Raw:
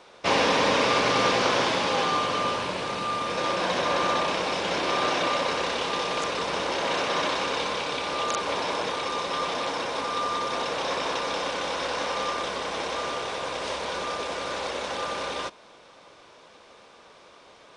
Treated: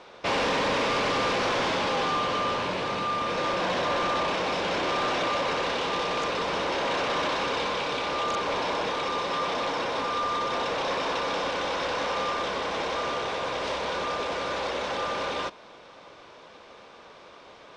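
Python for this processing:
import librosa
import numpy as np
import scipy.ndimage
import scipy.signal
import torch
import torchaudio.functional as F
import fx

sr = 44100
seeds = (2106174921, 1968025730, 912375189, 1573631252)

y = 10.0 ** (-25.5 / 20.0) * np.tanh(x / 10.0 ** (-25.5 / 20.0))
y = fx.air_absorb(y, sr, metres=88.0)
y = y * 10.0 ** (3.5 / 20.0)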